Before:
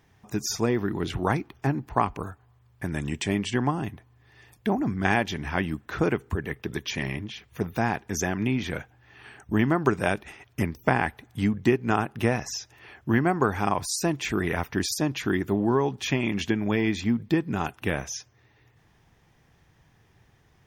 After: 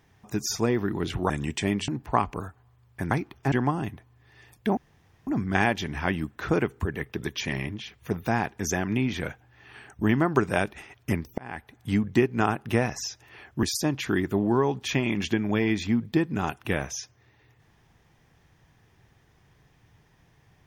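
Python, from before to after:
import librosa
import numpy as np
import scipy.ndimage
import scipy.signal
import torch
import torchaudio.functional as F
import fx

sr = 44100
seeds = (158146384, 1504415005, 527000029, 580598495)

y = fx.edit(x, sr, fx.swap(start_s=1.3, length_s=0.41, other_s=2.94, other_length_s=0.58),
    fx.insert_room_tone(at_s=4.77, length_s=0.5),
    fx.fade_in_span(start_s=10.88, length_s=0.53),
    fx.cut(start_s=13.13, length_s=1.67), tone=tone)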